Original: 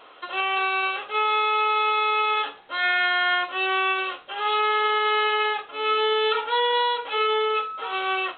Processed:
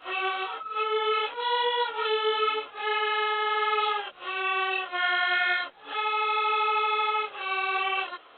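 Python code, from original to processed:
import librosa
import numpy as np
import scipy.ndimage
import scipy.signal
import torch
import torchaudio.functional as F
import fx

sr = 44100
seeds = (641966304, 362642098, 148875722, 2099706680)

y = np.flip(x).copy()
y = fx.detune_double(y, sr, cents=26)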